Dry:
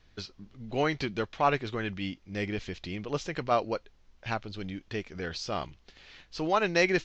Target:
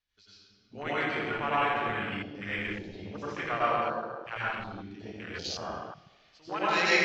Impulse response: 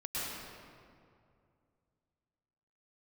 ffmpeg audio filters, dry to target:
-filter_complex "[0:a]tiltshelf=frequency=970:gain=-7.5[link_01];[1:a]atrim=start_sample=2205,asetrate=52920,aresample=44100[link_02];[link_01][link_02]afir=irnorm=-1:irlink=0,afwtdn=0.0251,asettb=1/sr,asplit=3[link_03][link_04][link_05];[link_03]atrim=end=2.234[link_06];[link_04]atrim=start=2.23:end=4.58,asetpts=PTS-STARTPTS,afade=type=in:duration=0.004:curve=qsin,afade=type=out:start_time=2.346:duration=0.004:curve=qsin,equalizer=frequency=1500:width=1.2:gain=4[link_07];[link_05]atrim=start=4.576[link_08];[link_06][link_07]acrossfade=duration=0.004:curve1=hsin:curve2=qsin[link_09];[link_09][link_08]acrossfade=duration=0.004:curve1=qsin:curve2=hsin,volume=-2dB"

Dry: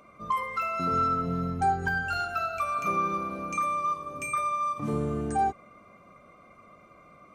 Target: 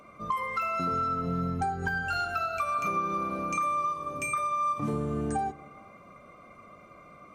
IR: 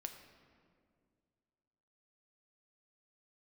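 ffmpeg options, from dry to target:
-filter_complex "[0:a]acompressor=threshold=-29dB:ratio=6,asplit=2[link_01][link_02];[1:a]atrim=start_sample=2205,afade=type=out:start_time=0.43:duration=0.01,atrim=end_sample=19404,asetrate=35721,aresample=44100[link_03];[link_02][link_03]afir=irnorm=-1:irlink=0,volume=-6.5dB[link_04];[link_01][link_04]amix=inputs=2:normalize=0"

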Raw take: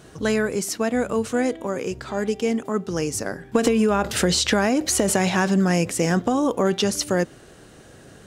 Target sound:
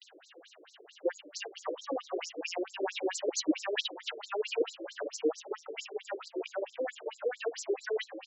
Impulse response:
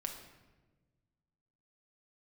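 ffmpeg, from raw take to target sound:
-filter_complex "[0:a]areverse,equalizer=frequency=2900:width_type=o:width=0.58:gain=10.5,acrossover=split=420[link_01][link_02];[link_02]acompressor=threshold=-25dB:ratio=3[link_03];[link_01][link_03]amix=inputs=2:normalize=0,asplit=7[link_04][link_05][link_06][link_07][link_08][link_09][link_10];[link_05]adelay=284,afreqshift=110,volume=-13dB[link_11];[link_06]adelay=568,afreqshift=220,volume=-18.4dB[link_12];[link_07]adelay=852,afreqshift=330,volume=-23.7dB[link_13];[link_08]adelay=1136,afreqshift=440,volume=-29.1dB[link_14];[link_09]adelay=1420,afreqshift=550,volume=-34.4dB[link_15];[link_10]adelay=1704,afreqshift=660,volume=-39.8dB[link_16];[link_04][link_11][link_12][link_13][link_14][link_15][link_16]amix=inputs=7:normalize=0,flanger=delay=4.8:depth=4:regen=56:speed=0.34:shape=triangular,acompressor=mode=upward:threshold=-42dB:ratio=2.5,afftfilt=real='re*between(b*sr/1024,380*pow(5700/380,0.5+0.5*sin(2*PI*4.5*pts/sr))/1.41,380*pow(5700/380,0.5+0.5*sin(2*PI*4.5*pts/sr))*1.41)':imag='im*between(b*sr/1024,380*pow(5700/380,0.5+0.5*sin(2*PI*4.5*pts/sr))/1.41,380*pow(5700/380,0.5+0.5*sin(2*PI*4.5*pts/sr))*1.41)':win_size=1024:overlap=0.75"

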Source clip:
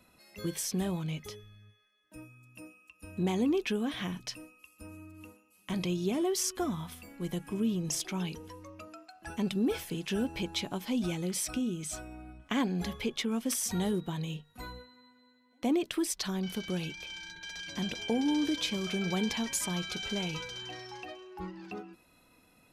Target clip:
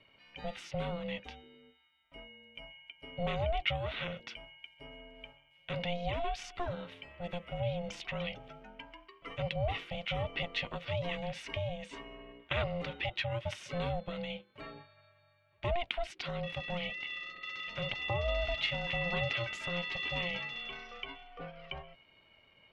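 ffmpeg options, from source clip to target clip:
ffmpeg -i in.wav -af "lowpass=frequency=2600:width_type=q:width=3.4,aeval=exprs='val(0)*sin(2*PI*350*n/s)':channel_layout=same,bandreject=frequency=1700:width=14,volume=-1.5dB" out.wav

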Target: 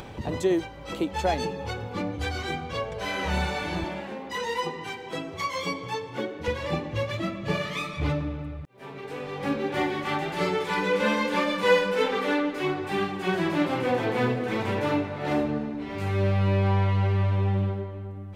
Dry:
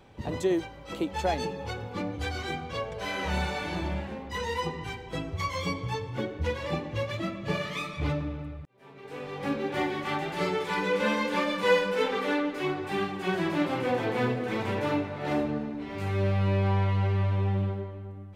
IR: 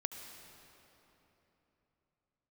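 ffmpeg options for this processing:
-filter_complex "[0:a]asettb=1/sr,asplit=3[link_01][link_02][link_03];[link_01]atrim=end=3.844[link_04];[link_02]atrim=start=3.84:end=6.48,asetpts=PTS-STARTPTS,afade=type=in:duration=0.004:curve=qsin,afade=type=out:start_time=2.636:duration=0.004:curve=qsin,highpass=230[link_05];[link_03]atrim=start=6.476[link_06];[link_04][link_05]acrossfade=duration=0.004:curve1=hsin:curve2=qsin[link_07];[link_07][link_06]acrossfade=duration=0.004:curve1=qsin:curve2=hsin,acompressor=mode=upward:threshold=-34dB:ratio=2.5,volume=2.5dB"

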